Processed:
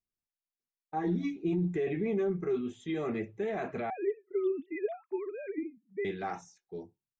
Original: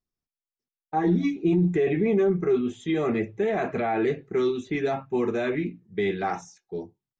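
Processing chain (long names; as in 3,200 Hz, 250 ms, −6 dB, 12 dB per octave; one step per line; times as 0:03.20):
0:03.90–0:06.05: three sine waves on the formant tracks
level −8.5 dB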